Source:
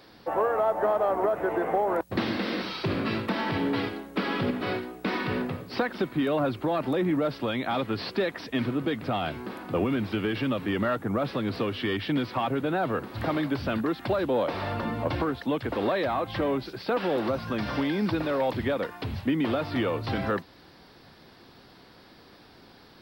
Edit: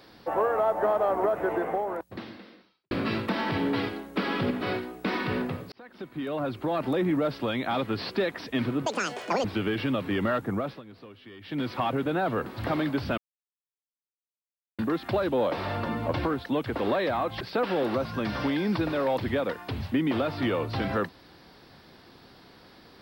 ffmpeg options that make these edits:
-filter_complex "[0:a]asplit=9[a][b][c][d][e][f][g][h][i];[a]atrim=end=2.91,asetpts=PTS-STARTPTS,afade=t=out:st=1.52:d=1.39:c=qua[j];[b]atrim=start=2.91:end=5.72,asetpts=PTS-STARTPTS,afade=t=in:d=0.004:c=hsin,afade=t=out:st=2.806:d=0.004:c=hsin[k];[c]atrim=start=5.72:end=8.864,asetpts=PTS-STARTPTS,afade=t=in:d=1.15[l];[d]atrim=start=8.86:end=10.02,asetpts=PTS-STARTPTS,asetrate=87318,aresample=44100,atrim=end_sample=25836,asetpts=PTS-STARTPTS[m];[e]atrim=start=10.016:end=11.4,asetpts=PTS-STARTPTS,afade=t=out:st=1.064:d=0.32:silence=0.11885[n];[f]atrim=start=11.4:end=11.97,asetpts=PTS-STARTPTS,volume=-18.5dB[o];[g]atrim=start=11.97:end=13.75,asetpts=PTS-STARTPTS,afade=t=in:d=0.32:silence=0.11885,afade=t=out:st=1.776:d=0.004:c=hsin,apad=pad_dur=1.61[p];[h]atrim=start=13.75:end=16.372,asetpts=PTS-STARTPTS,afade=t=in:d=0.004:c=hsin[q];[i]atrim=start=16.738[r];[j][k][l]concat=n=3:v=0:a=1[s];[s][m]acrossfade=d=0.004:c1=hsin:c2=hsin[t];[n][o][p][q]concat=n=4:v=0:a=1[u];[t][u]acrossfade=d=0.004:c1=hsin:c2=hsin[v];[v][r]acrossfade=d=0.004:c1=hsin:c2=hsin"

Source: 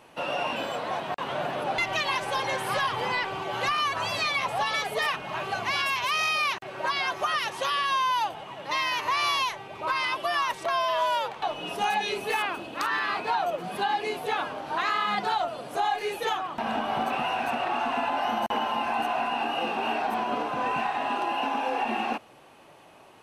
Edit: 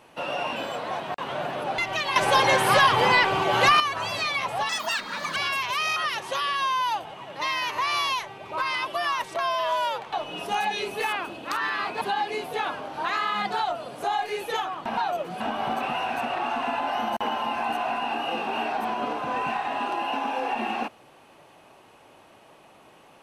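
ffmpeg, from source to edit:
-filter_complex "[0:a]asplit=9[a][b][c][d][e][f][g][h][i];[a]atrim=end=2.162[j];[b]atrim=start=2.158:end=3.802,asetpts=PTS-STARTPTS,volume=9dB[k];[c]atrim=start=3.798:end=4.694[l];[d]atrim=start=4.69:end=5.7,asetpts=PTS-STARTPTS,asetrate=66150,aresample=44100[m];[e]atrim=start=5.696:end=6.302[n];[f]atrim=start=7.258:end=13.312[o];[g]atrim=start=13.738:end=16.702[p];[h]atrim=start=13.308:end=13.742[q];[i]atrim=start=16.698[r];[j][k]acrossfade=d=0.004:c1=hsin:c2=hsin[s];[s][l]acrossfade=d=0.004:c1=hsin:c2=hsin[t];[t][m]acrossfade=d=0.004:c1=hsin:c2=hsin[u];[u][n]acrossfade=d=0.004:c1=hsin:c2=hsin[v];[v][o]acrossfade=d=0.004:c1=hsin:c2=hsin[w];[w][p]acrossfade=d=0.004:c1=hsin:c2=hsin[x];[x][q]acrossfade=d=0.004:c1=hsin:c2=hsin[y];[y][r]acrossfade=d=0.004:c1=hsin:c2=hsin"

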